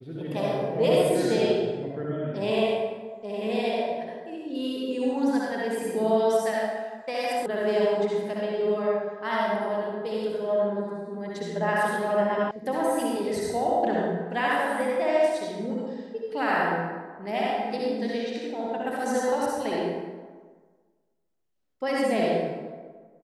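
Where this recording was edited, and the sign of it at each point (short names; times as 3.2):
7.46 sound cut off
12.51 sound cut off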